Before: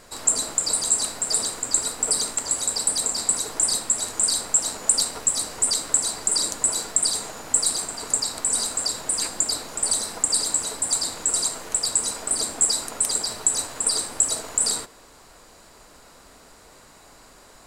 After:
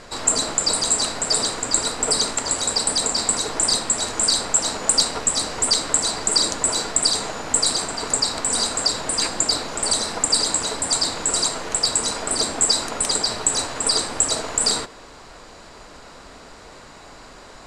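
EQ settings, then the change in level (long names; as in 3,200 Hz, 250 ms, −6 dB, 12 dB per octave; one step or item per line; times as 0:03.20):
low-pass filter 5,600 Hz 12 dB per octave
+8.0 dB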